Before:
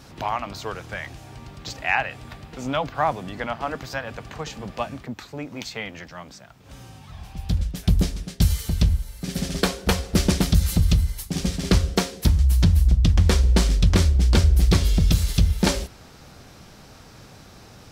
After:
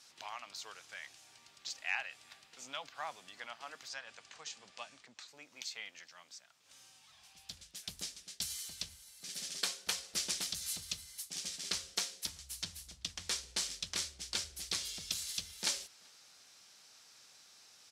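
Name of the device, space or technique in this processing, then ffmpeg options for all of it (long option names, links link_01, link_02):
piezo pickup straight into a mixer: -filter_complex "[0:a]lowpass=7700,aderivative,asettb=1/sr,asplit=3[link_01][link_02][link_03];[link_01]atrim=end=3.884[link_04];[link_02]atrim=start=3.88:end=5.28,asetpts=PTS-STARTPTS,afade=type=in:duration=0.004:curve=qsin,afade=type=out:start_time=1.396:duration=0.004:curve=qsin,lowpass=frequency=9400:width=0.5412,lowpass=frequency=9400:width=1.3066[link_05];[link_03]atrim=start=5.276[link_06];[link_04][link_05]acrossfade=duration=0.004:curve1=hsin:curve2=qsin[link_07];[link_07][link_06]acrossfade=duration=0.004:curve1=qsin:curve2=hsin,asplit=2[link_08][link_09];[link_09]adelay=384.8,volume=-28dB,highshelf=frequency=4000:gain=-8.66[link_10];[link_08][link_10]amix=inputs=2:normalize=0,volume=-2.5dB"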